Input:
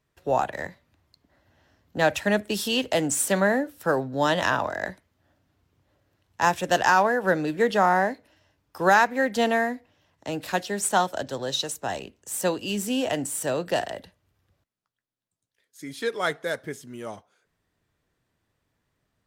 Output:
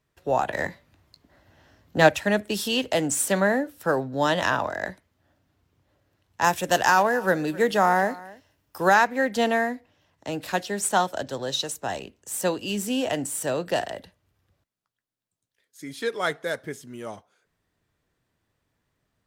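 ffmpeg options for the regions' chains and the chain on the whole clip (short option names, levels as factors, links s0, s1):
-filter_complex "[0:a]asettb=1/sr,asplit=3[s0][s1][s2];[s0]atrim=end=0.484[s3];[s1]atrim=start=0.48:end=2.09,asetpts=PTS-STARTPTS,afade=t=in:d=0.004:c=qsin,afade=t=out:st=1.606:d=0.004:c=qsin,acontrast=29,asplit=2[s4][s5];[s5]adelay=19,volume=0.251[s6];[s4][s6]amix=inputs=2:normalize=0,atrim=end_sample=71001[s7];[s2]atrim=start=2.086[s8];[s3][s7]acrossfade=d=0.004:c1=hsin:c2=qsin[s9];[s9][s8]acrossfade=d=0.004:c1=qsin:c2=hsin,asettb=1/sr,asplit=3[s10][s11][s12];[s10]atrim=end=6.444[s13];[s11]atrim=start=6.44:end=8.89,asetpts=PTS-STARTPTS,afade=t=in:d=0.004:c=qsin,afade=t=out:st=2.446:d=0.004:c=qsin,highshelf=f=8700:g=10.5,aecho=1:1:264:0.0944,atrim=end_sample=108045[s14];[s12]atrim=start=8.886[s15];[s13][s14]acrossfade=d=0.004:c1=hsin:c2=qsin[s16];[s16][s15]acrossfade=d=0.004:c1=qsin:c2=hsin"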